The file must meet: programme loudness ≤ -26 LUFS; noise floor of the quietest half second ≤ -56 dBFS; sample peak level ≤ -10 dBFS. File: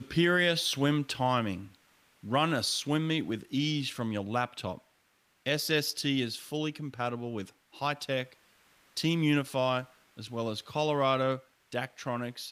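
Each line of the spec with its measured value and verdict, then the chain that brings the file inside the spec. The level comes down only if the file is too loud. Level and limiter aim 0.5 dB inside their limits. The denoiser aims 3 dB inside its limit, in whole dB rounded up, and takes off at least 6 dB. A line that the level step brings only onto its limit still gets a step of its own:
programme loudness -31.0 LUFS: OK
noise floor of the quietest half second -70 dBFS: OK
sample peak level -14.5 dBFS: OK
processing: none

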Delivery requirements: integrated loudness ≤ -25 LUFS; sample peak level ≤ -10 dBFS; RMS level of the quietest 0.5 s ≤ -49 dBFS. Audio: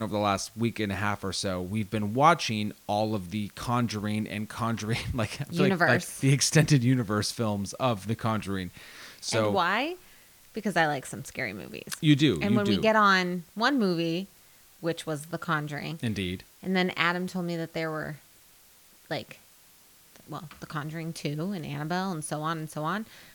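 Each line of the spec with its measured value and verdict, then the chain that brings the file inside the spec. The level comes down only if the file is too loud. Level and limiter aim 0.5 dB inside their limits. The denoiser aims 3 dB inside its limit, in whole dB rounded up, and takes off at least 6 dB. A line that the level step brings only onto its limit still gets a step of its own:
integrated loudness -28.0 LUFS: OK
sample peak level -6.0 dBFS: fail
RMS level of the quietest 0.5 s -57 dBFS: OK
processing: limiter -10.5 dBFS

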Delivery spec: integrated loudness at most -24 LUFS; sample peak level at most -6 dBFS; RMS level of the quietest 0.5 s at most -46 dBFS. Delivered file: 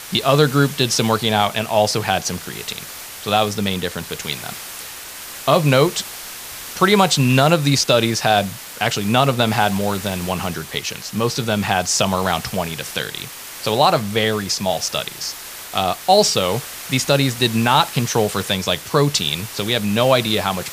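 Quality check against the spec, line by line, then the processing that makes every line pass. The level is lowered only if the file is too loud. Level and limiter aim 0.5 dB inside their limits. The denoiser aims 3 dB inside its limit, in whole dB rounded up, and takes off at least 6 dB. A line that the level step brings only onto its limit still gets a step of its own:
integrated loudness -18.5 LUFS: fail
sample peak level -1.5 dBFS: fail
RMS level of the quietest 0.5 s -34 dBFS: fail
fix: denoiser 9 dB, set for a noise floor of -34 dBFS; gain -6 dB

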